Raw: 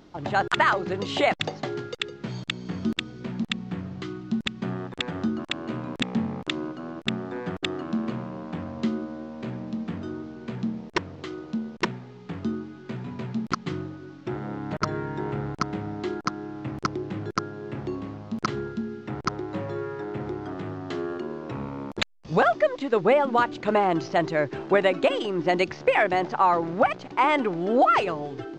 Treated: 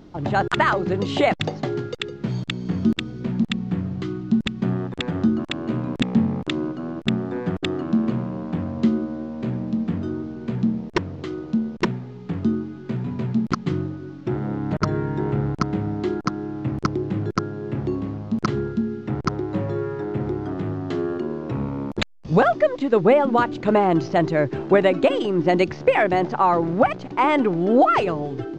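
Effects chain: bass shelf 460 Hz +9.5 dB

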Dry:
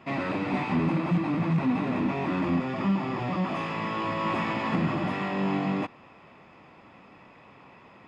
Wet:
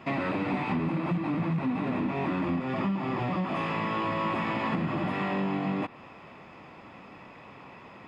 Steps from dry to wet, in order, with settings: dynamic bell 6.1 kHz, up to -6 dB, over -57 dBFS, Q 1.5; compression, threshold -30 dBFS, peak gain reduction 9 dB; trim +4 dB

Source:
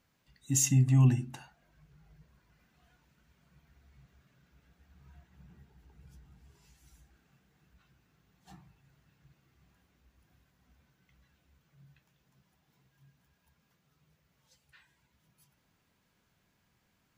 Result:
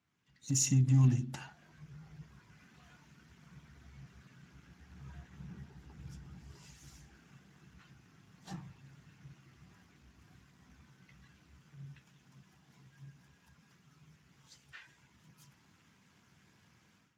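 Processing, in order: compression 2:1, threshold -45 dBFS, peak gain reduction 14 dB; peaking EQ 560 Hz -12.5 dB 0.47 oct; level rider gain up to 15 dB; trim -5 dB; Speex 15 kbps 32 kHz

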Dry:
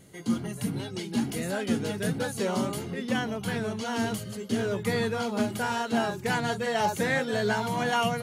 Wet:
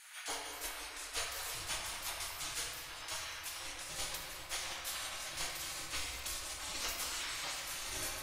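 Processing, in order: wind noise 330 Hz -36 dBFS; spectral gate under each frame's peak -30 dB weak; bass shelf 170 Hz +8.5 dB; simulated room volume 200 m³, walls hard, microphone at 0.58 m; trim +3 dB

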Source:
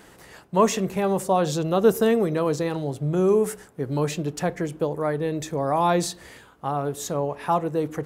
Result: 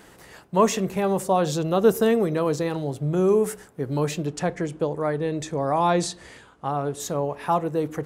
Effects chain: 4.27–7.00 s: low-pass 9.7 kHz 24 dB/octave

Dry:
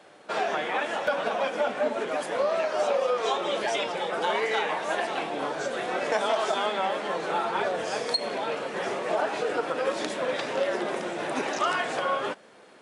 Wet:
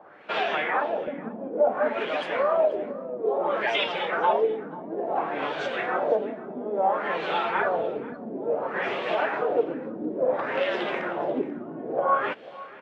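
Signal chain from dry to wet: LFO low-pass sine 0.58 Hz 240–3200 Hz; delay 489 ms -18.5 dB

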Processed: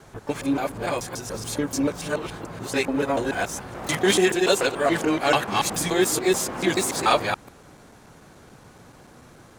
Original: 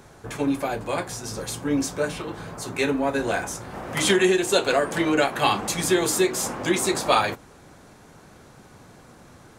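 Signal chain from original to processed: time reversed locally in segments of 144 ms; harmony voices +12 st -16 dB

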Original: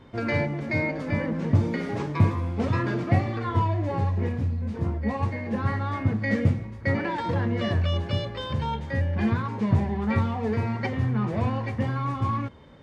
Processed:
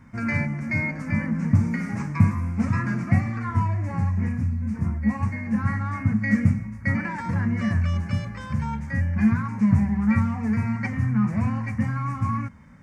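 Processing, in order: FFT filter 140 Hz 0 dB, 210 Hz +6 dB, 390 Hz -17 dB, 1.3 kHz 0 dB, 2.3 kHz +1 dB, 3.4 kHz -20 dB, 5.7 kHz +2 dB, 8.1 kHz +5 dB; trim +1.5 dB

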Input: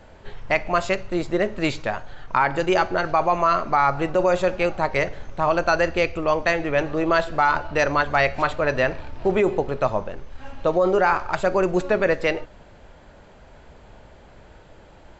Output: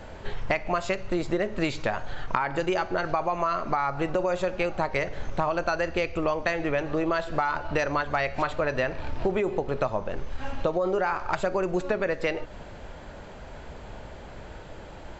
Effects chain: compression 10:1, threshold -28 dBFS, peak gain reduction 14 dB; trim +5.5 dB

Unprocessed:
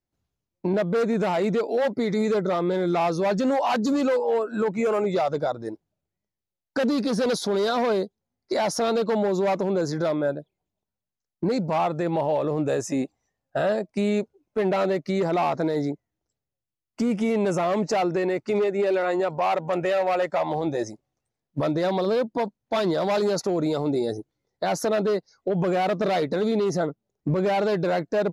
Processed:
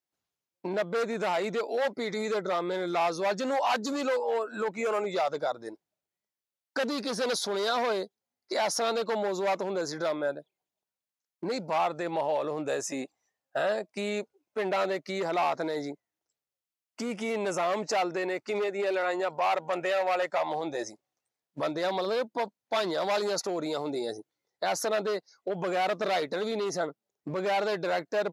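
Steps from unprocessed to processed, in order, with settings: high-pass 840 Hz 6 dB/octave

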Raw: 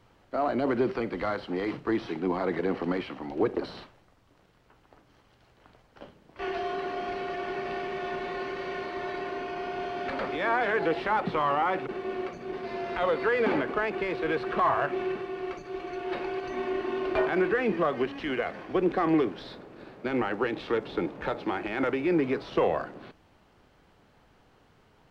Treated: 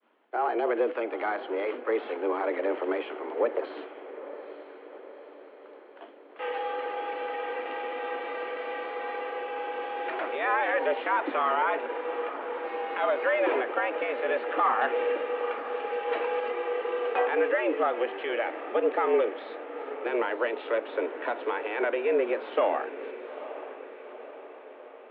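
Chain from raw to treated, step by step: 14.81–16.52 s: waveshaping leveller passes 1; expander -55 dBFS; echo that smears into a reverb 874 ms, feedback 57%, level -13 dB; mistuned SSB +110 Hz 150–3200 Hz

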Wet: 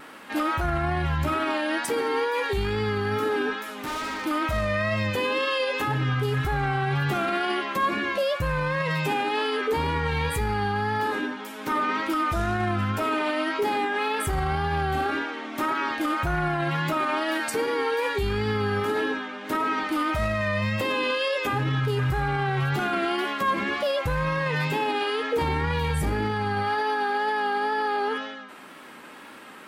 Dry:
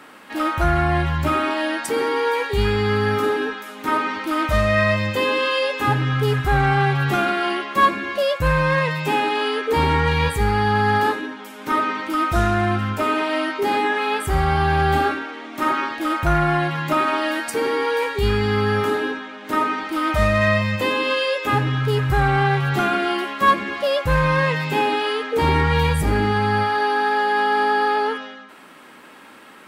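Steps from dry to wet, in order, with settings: 3.65–4.26 s: overload inside the chain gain 29.5 dB; wow and flutter 45 cents; peak limiter -17.5 dBFS, peak gain reduction 10 dB

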